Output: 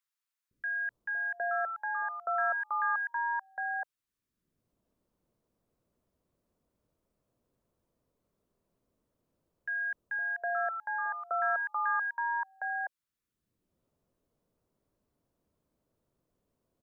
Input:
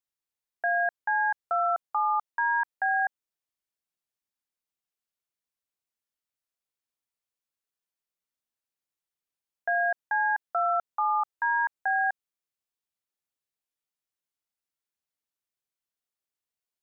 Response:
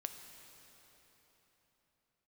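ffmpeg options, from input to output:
-filter_complex "[0:a]equalizer=frequency=800:width_type=o:width=0.36:gain=-10,acrossover=split=850[link_01][link_02];[link_01]acompressor=mode=upward:threshold=-57dB:ratio=2.5[link_03];[link_03][link_02]amix=inputs=2:normalize=0,acrossover=split=390|1500[link_04][link_05][link_06];[link_04]adelay=510[link_07];[link_05]adelay=760[link_08];[link_07][link_08][link_06]amix=inputs=3:normalize=0"

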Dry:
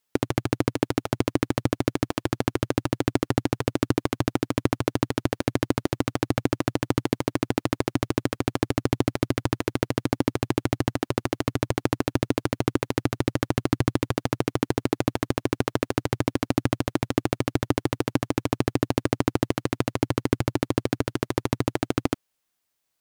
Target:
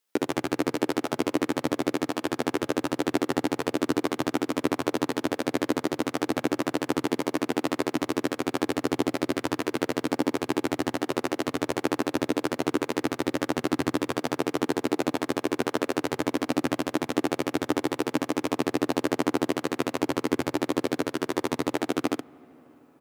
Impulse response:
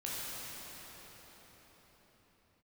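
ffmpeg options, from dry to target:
-filter_complex "[0:a]highpass=210,aecho=1:1:13|64:0.631|0.562,asplit=2[link_01][link_02];[1:a]atrim=start_sample=2205,lowpass=2500[link_03];[link_02][link_03]afir=irnorm=-1:irlink=0,volume=-25dB[link_04];[link_01][link_04]amix=inputs=2:normalize=0,volume=-2.5dB"

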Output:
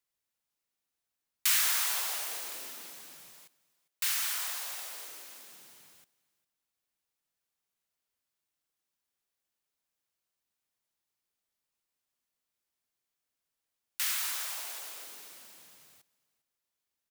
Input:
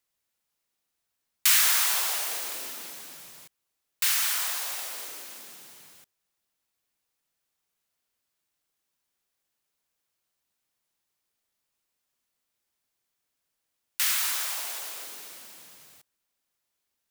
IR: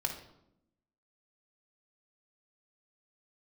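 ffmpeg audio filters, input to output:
-filter_complex "[0:a]asettb=1/sr,asplit=3[link_01][link_02][link_03];[link_01]atrim=end=3.334[link_04];[link_02]atrim=start=3.33:end=5.52,asetpts=PTS-STARTPTS,afade=type=in:duration=0.004:curve=qsin,afade=type=out:start_time=2.186:duration=0.004:curve=qsin,highpass=frequency=250:poles=1[link_05];[link_03]atrim=start=5.516[link_06];[link_04][link_05]acrossfade=duration=0.004:curve1=hsin:curve2=qsin[link_07];[link_07][link_06]acrossfade=duration=0.004:curve1=qsin:curve2=hsin,aecho=1:1:403:0.075,volume=-6dB"

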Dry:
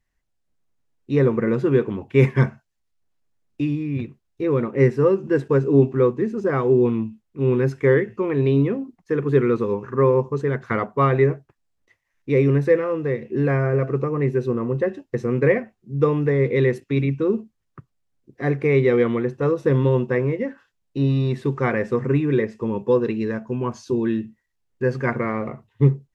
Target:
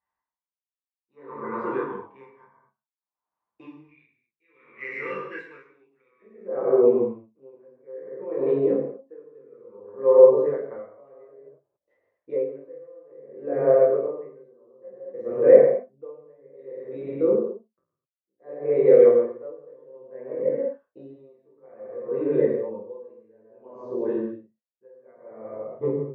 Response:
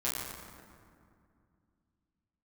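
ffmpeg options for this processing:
-filter_complex "[0:a]asetnsamples=nb_out_samples=441:pad=0,asendcmd='3.89 bandpass f 2300;6.22 bandpass f 570',bandpass=frequency=980:width_type=q:width=5.3:csg=0[link_01];[1:a]atrim=start_sample=2205,afade=type=out:start_time=0.31:duration=0.01,atrim=end_sample=14112[link_02];[link_01][link_02]afir=irnorm=-1:irlink=0,aeval=exprs='val(0)*pow(10,-33*(0.5-0.5*cos(2*PI*0.58*n/s))/20)':channel_layout=same,volume=6.5dB"

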